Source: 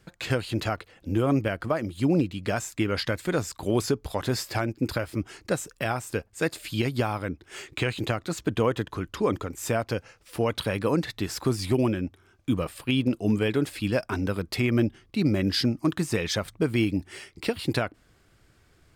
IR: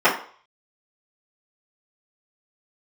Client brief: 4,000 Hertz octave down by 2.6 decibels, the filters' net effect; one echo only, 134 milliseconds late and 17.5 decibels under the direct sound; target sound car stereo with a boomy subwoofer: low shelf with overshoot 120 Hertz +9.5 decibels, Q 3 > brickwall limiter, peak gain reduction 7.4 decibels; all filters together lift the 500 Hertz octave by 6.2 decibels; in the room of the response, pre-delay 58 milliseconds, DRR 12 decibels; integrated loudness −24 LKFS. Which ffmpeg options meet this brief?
-filter_complex "[0:a]equalizer=frequency=500:width_type=o:gain=8.5,equalizer=frequency=4000:width_type=o:gain=-3.5,aecho=1:1:134:0.133,asplit=2[link_01][link_02];[1:a]atrim=start_sample=2205,adelay=58[link_03];[link_02][link_03]afir=irnorm=-1:irlink=0,volume=-34.5dB[link_04];[link_01][link_04]amix=inputs=2:normalize=0,lowshelf=frequency=120:width_type=q:width=3:gain=9.5,volume=1.5dB,alimiter=limit=-13dB:level=0:latency=1"

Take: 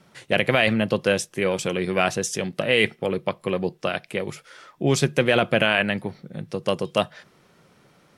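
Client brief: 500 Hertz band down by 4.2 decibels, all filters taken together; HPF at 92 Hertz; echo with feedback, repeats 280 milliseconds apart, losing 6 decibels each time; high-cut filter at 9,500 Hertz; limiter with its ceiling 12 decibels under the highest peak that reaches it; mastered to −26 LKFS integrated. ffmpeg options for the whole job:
ffmpeg -i in.wav -af "highpass=92,lowpass=9500,equalizer=frequency=500:width_type=o:gain=-5,alimiter=limit=-17dB:level=0:latency=1,aecho=1:1:280|560|840|1120|1400|1680:0.501|0.251|0.125|0.0626|0.0313|0.0157,volume=3.5dB" out.wav

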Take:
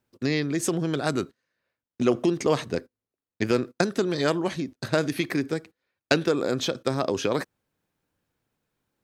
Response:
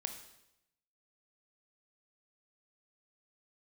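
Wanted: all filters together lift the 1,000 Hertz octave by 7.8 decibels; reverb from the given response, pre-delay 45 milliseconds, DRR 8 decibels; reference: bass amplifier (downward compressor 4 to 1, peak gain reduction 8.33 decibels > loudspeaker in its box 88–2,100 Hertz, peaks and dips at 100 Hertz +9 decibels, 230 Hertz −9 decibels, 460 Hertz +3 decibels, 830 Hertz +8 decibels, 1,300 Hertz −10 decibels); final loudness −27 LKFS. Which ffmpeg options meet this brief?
-filter_complex "[0:a]equalizer=frequency=1000:width_type=o:gain=8,asplit=2[link_01][link_02];[1:a]atrim=start_sample=2205,adelay=45[link_03];[link_02][link_03]afir=irnorm=-1:irlink=0,volume=-7dB[link_04];[link_01][link_04]amix=inputs=2:normalize=0,acompressor=threshold=-22dB:ratio=4,highpass=frequency=88:width=0.5412,highpass=frequency=88:width=1.3066,equalizer=frequency=100:width_type=q:width=4:gain=9,equalizer=frequency=230:width_type=q:width=4:gain=-9,equalizer=frequency=460:width_type=q:width=4:gain=3,equalizer=frequency=830:width_type=q:width=4:gain=8,equalizer=frequency=1300:width_type=q:width=4:gain=-10,lowpass=frequency=2100:width=0.5412,lowpass=frequency=2100:width=1.3066,volume=1.5dB"

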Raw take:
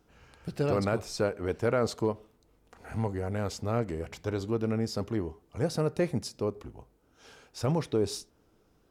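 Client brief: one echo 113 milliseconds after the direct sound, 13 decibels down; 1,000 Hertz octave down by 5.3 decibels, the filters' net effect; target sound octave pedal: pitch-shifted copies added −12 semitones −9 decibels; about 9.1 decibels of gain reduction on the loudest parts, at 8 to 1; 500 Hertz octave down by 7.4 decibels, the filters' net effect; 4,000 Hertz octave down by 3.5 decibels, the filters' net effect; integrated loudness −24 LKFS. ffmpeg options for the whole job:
ffmpeg -i in.wav -filter_complex "[0:a]equalizer=frequency=500:width_type=o:gain=-8,equalizer=frequency=1000:width_type=o:gain=-4.5,equalizer=frequency=4000:width_type=o:gain=-4.5,acompressor=threshold=-36dB:ratio=8,aecho=1:1:113:0.224,asplit=2[link_01][link_02];[link_02]asetrate=22050,aresample=44100,atempo=2,volume=-9dB[link_03];[link_01][link_03]amix=inputs=2:normalize=0,volume=17.5dB" out.wav

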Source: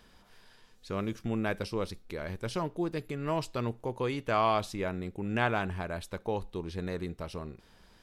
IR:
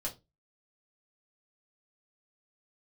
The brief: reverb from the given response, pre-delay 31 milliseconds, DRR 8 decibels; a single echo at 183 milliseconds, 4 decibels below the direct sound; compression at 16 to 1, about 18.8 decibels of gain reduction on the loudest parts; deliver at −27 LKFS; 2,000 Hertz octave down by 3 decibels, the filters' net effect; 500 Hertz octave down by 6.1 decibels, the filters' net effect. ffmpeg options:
-filter_complex "[0:a]equalizer=frequency=500:width_type=o:gain=-8,equalizer=frequency=2000:width_type=o:gain=-3.5,acompressor=threshold=-44dB:ratio=16,aecho=1:1:183:0.631,asplit=2[link_01][link_02];[1:a]atrim=start_sample=2205,adelay=31[link_03];[link_02][link_03]afir=irnorm=-1:irlink=0,volume=-9dB[link_04];[link_01][link_04]amix=inputs=2:normalize=0,volume=21dB"

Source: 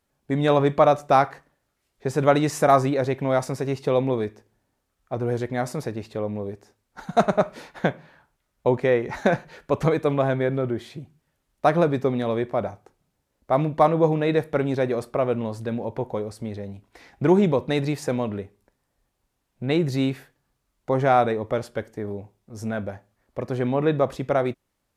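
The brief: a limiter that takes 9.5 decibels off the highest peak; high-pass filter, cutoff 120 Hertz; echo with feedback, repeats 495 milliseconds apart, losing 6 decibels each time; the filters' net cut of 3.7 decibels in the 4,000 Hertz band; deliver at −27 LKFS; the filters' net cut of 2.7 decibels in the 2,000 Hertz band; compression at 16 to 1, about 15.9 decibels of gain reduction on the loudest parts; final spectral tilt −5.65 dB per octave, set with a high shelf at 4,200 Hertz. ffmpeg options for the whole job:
ffmpeg -i in.wav -af "highpass=120,equalizer=frequency=2000:width_type=o:gain=-3.5,equalizer=frequency=4000:width_type=o:gain=-7,highshelf=frequency=4200:gain=7,acompressor=threshold=-28dB:ratio=16,alimiter=limit=-23.5dB:level=0:latency=1,aecho=1:1:495|990|1485|1980|2475|2970:0.501|0.251|0.125|0.0626|0.0313|0.0157,volume=9dB" out.wav

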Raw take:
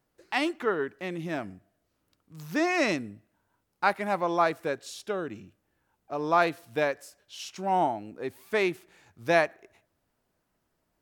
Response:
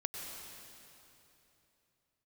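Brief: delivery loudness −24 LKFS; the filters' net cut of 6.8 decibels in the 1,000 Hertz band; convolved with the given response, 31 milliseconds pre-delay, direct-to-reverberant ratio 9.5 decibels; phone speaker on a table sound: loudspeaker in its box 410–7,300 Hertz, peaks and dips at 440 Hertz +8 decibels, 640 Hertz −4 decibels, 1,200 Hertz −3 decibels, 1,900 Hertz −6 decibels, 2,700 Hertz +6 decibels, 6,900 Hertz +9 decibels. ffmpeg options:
-filter_complex "[0:a]equalizer=frequency=1000:width_type=o:gain=-7.5,asplit=2[link_01][link_02];[1:a]atrim=start_sample=2205,adelay=31[link_03];[link_02][link_03]afir=irnorm=-1:irlink=0,volume=-10.5dB[link_04];[link_01][link_04]amix=inputs=2:normalize=0,highpass=frequency=410:width=0.5412,highpass=frequency=410:width=1.3066,equalizer=frequency=440:width_type=q:width=4:gain=8,equalizer=frequency=640:width_type=q:width=4:gain=-4,equalizer=frequency=1200:width_type=q:width=4:gain=-3,equalizer=frequency=1900:width_type=q:width=4:gain=-6,equalizer=frequency=2700:width_type=q:width=4:gain=6,equalizer=frequency=6900:width_type=q:width=4:gain=9,lowpass=frequency=7300:width=0.5412,lowpass=frequency=7300:width=1.3066,volume=7.5dB"

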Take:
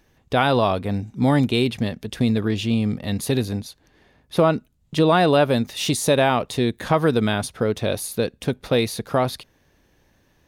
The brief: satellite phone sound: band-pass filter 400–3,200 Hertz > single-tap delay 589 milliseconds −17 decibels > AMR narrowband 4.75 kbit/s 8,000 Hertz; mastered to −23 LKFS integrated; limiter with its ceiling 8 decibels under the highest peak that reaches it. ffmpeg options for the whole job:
ffmpeg -i in.wav -af "alimiter=limit=-12.5dB:level=0:latency=1,highpass=400,lowpass=3200,aecho=1:1:589:0.141,volume=6.5dB" -ar 8000 -c:a libopencore_amrnb -b:a 4750 out.amr

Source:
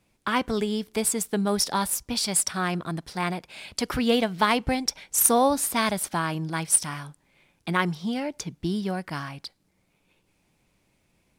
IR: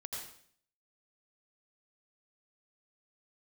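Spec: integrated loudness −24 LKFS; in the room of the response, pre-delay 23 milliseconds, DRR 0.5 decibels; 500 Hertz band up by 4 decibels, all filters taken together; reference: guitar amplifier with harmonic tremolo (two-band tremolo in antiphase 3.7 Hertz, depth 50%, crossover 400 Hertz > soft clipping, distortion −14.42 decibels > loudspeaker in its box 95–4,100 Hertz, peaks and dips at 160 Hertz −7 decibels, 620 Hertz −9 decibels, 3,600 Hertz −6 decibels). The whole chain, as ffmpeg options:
-filter_complex "[0:a]equalizer=frequency=500:width_type=o:gain=7.5,asplit=2[link_01][link_02];[1:a]atrim=start_sample=2205,adelay=23[link_03];[link_02][link_03]afir=irnorm=-1:irlink=0,volume=0.5dB[link_04];[link_01][link_04]amix=inputs=2:normalize=0,acrossover=split=400[link_05][link_06];[link_05]aeval=exprs='val(0)*(1-0.5/2+0.5/2*cos(2*PI*3.7*n/s))':channel_layout=same[link_07];[link_06]aeval=exprs='val(0)*(1-0.5/2-0.5/2*cos(2*PI*3.7*n/s))':channel_layout=same[link_08];[link_07][link_08]amix=inputs=2:normalize=0,asoftclip=threshold=-14.5dB,highpass=95,equalizer=frequency=160:width_type=q:width=4:gain=-7,equalizer=frequency=620:width_type=q:width=4:gain=-9,equalizer=frequency=3600:width_type=q:width=4:gain=-6,lowpass=frequency=4100:width=0.5412,lowpass=frequency=4100:width=1.3066,volume=4dB"

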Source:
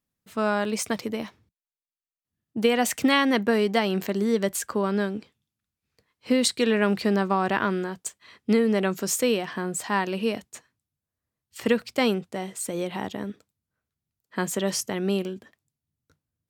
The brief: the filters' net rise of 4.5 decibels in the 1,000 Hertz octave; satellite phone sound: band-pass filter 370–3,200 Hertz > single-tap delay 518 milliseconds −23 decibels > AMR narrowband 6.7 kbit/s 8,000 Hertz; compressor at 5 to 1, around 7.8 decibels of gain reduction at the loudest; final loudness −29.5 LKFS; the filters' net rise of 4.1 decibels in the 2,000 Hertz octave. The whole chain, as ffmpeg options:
ffmpeg -i in.wav -af "equalizer=frequency=1000:width_type=o:gain=5,equalizer=frequency=2000:width_type=o:gain=4,acompressor=threshold=-23dB:ratio=5,highpass=370,lowpass=3200,aecho=1:1:518:0.0708,volume=3dB" -ar 8000 -c:a libopencore_amrnb -b:a 6700 out.amr

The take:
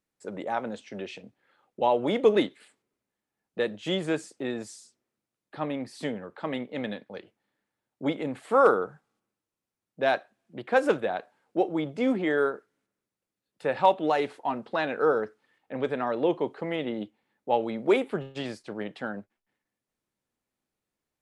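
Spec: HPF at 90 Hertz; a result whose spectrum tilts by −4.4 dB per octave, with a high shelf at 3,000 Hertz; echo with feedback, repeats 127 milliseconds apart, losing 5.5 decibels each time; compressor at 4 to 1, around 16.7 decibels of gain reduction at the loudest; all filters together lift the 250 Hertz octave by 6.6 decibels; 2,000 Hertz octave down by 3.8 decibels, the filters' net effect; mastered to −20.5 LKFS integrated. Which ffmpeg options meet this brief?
ffmpeg -i in.wav -af "highpass=90,equalizer=frequency=250:width_type=o:gain=8.5,equalizer=frequency=2000:width_type=o:gain=-3.5,highshelf=frequency=3000:gain=-5.5,acompressor=threshold=-34dB:ratio=4,aecho=1:1:127|254|381|508|635|762|889:0.531|0.281|0.149|0.079|0.0419|0.0222|0.0118,volume=16dB" out.wav

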